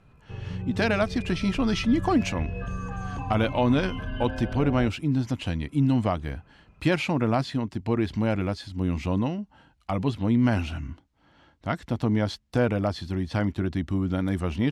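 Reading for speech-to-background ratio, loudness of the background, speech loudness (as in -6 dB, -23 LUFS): 8.5 dB, -35.0 LUFS, -26.5 LUFS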